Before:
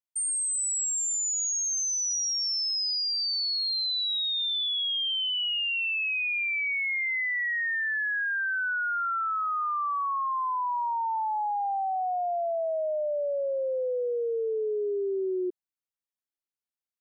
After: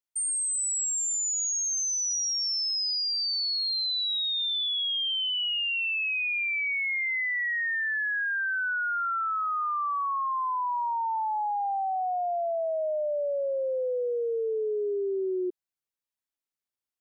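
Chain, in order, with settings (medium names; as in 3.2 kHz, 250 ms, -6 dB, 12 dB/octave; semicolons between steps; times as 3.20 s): 12.81–14.94 s: peaking EQ 8 kHz +11.5 dB 1.7 oct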